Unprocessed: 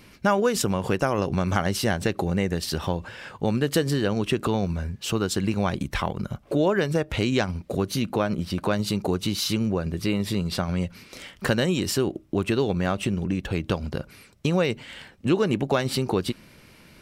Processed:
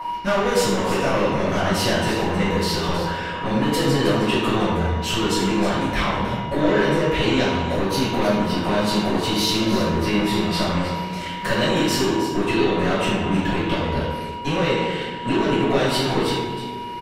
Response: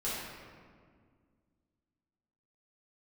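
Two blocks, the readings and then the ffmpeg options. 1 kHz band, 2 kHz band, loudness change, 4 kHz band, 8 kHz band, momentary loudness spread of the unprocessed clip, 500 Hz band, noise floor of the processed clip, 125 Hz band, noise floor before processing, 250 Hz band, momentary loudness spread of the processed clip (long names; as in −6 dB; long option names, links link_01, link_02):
+8.0 dB, +6.5 dB, +4.5 dB, +7.0 dB, +2.5 dB, 7 LU, +4.5 dB, −30 dBFS, +2.0 dB, −52 dBFS, +4.0 dB, 5 LU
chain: -filter_complex "[0:a]aeval=exprs='val(0)+0.0316*sin(2*PI*960*n/s)':channel_layout=same,asplit=2[link_01][link_02];[link_02]alimiter=limit=-18dB:level=0:latency=1,volume=0dB[link_03];[link_01][link_03]amix=inputs=2:normalize=0,bass=frequency=250:gain=-6,treble=frequency=4000:gain=-7,acrossover=split=2500[link_04][link_05];[link_04]asoftclip=type=tanh:threshold=-23dB[link_06];[link_05]aecho=1:1:316:0.299[link_07];[link_06][link_07]amix=inputs=2:normalize=0[link_08];[1:a]atrim=start_sample=2205,asetrate=61740,aresample=44100[link_09];[link_08][link_09]afir=irnorm=-1:irlink=0,volume=3.5dB"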